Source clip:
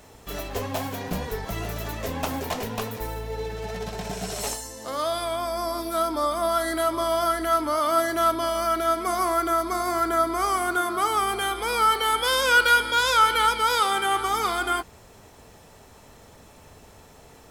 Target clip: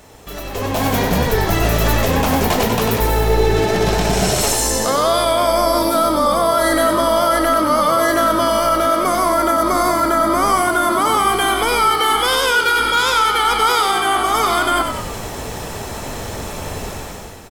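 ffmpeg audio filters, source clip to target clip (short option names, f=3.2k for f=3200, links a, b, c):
-filter_complex "[0:a]areverse,acompressor=threshold=-31dB:ratio=6,areverse,alimiter=level_in=5dB:limit=-24dB:level=0:latency=1:release=171,volume=-5dB,dynaudnorm=f=140:g=9:m=16dB,asplit=8[a][b][c][d][e][f][g][h];[b]adelay=95,afreqshift=-54,volume=-6dB[i];[c]adelay=190,afreqshift=-108,volume=-11.4dB[j];[d]adelay=285,afreqshift=-162,volume=-16.7dB[k];[e]adelay=380,afreqshift=-216,volume=-22.1dB[l];[f]adelay=475,afreqshift=-270,volume=-27.4dB[m];[g]adelay=570,afreqshift=-324,volume=-32.8dB[n];[h]adelay=665,afreqshift=-378,volume=-38.1dB[o];[a][i][j][k][l][m][n][o]amix=inputs=8:normalize=0,volume=5.5dB"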